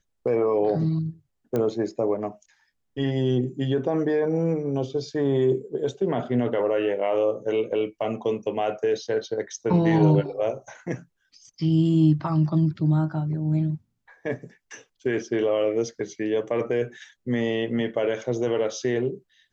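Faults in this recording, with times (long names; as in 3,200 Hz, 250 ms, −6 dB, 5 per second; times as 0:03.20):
0:01.56: click −15 dBFS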